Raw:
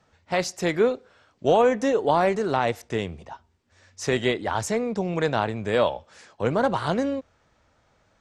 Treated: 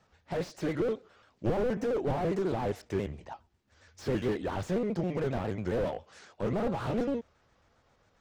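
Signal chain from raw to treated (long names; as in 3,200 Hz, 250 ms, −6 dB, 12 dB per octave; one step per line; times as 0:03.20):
pitch shifter gated in a rhythm −2.5 semitones, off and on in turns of 68 ms
slew-rate limiting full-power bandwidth 29 Hz
level −3 dB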